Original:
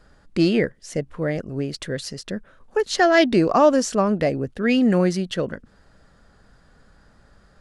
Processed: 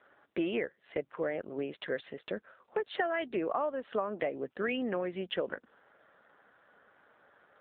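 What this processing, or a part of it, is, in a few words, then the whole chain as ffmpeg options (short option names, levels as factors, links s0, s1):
voicemail: -af "highpass=440,lowpass=3100,acompressor=threshold=0.0398:ratio=10" -ar 8000 -c:a libopencore_amrnb -b:a 7400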